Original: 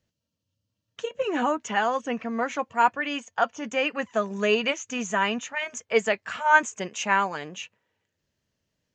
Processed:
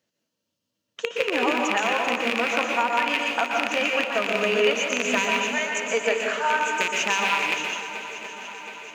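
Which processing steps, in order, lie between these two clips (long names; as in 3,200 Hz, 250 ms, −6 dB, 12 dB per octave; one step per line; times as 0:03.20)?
loose part that buzzes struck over −41 dBFS, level −10 dBFS
high-pass filter 250 Hz 12 dB per octave
downward compressor, threshold −24 dBFS, peak gain reduction 12 dB
on a send: feedback echo with a long and a short gap by turns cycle 722 ms, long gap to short 1.5 to 1, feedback 60%, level −13 dB
on the sum: dense smooth reverb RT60 0.8 s, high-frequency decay 0.7×, pre-delay 110 ms, DRR 0 dB
level +3 dB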